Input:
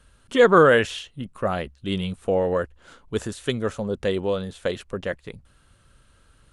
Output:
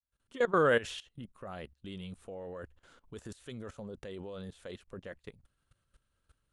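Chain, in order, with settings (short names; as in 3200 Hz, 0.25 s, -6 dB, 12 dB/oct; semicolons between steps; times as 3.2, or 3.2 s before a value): opening faded in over 0.85 s; level quantiser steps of 18 dB; gain -6.5 dB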